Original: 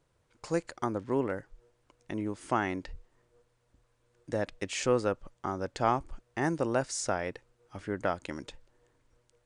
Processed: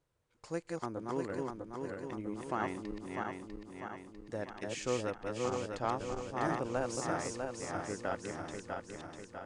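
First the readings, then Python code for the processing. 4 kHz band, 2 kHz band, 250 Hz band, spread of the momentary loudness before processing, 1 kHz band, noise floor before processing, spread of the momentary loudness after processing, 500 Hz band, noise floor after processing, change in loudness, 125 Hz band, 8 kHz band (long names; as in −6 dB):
−4.5 dB, −4.0 dB, −4.5 dB, 13 LU, −4.0 dB, −73 dBFS, 10 LU, −4.5 dB, −64 dBFS, −5.5 dB, −4.5 dB, −4.5 dB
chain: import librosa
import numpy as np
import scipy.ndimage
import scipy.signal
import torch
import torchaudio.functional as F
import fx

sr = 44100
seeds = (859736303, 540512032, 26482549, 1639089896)

y = fx.reverse_delay_fb(x, sr, ms=324, feedback_pct=74, wet_db=-2.0)
y = fx.cheby_harmonics(y, sr, harmonics=(7,), levels_db=(-36,), full_scale_db=-11.5)
y = F.gain(torch.from_numpy(y), -7.5).numpy()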